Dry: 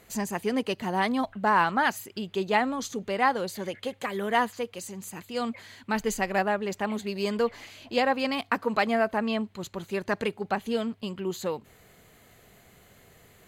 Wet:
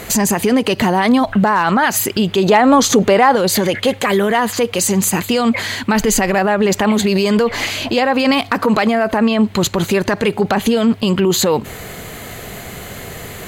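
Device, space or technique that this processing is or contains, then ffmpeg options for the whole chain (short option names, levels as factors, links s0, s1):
loud club master: -filter_complex "[0:a]acompressor=threshold=0.0398:ratio=2,asoftclip=type=hard:threshold=0.119,alimiter=level_in=33.5:limit=0.891:release=50:level=0:latency=1,asettb=1/sr,asplit=3[s0][s1][s2];[s0]atrim=end=2.434[s3];[s1]atrim=start=2.43:end=3.36,asetpts=PTS-STARTPTS,afade=t=in:d=0.004:c=qsin,afade=t=out:st=0.926:d=0.004:c=qsin,equalizer=f=690:t=o:w=2.3:g=5[s4];[s2]atrim=start=3.356[s5];[s3][s4]acrossfade=d=0.004:c1=hsin:c2=qsin[s6];[s6][s5]acrossfade=d=0.004:c1=qsin:c2=hsin,volume=0.562"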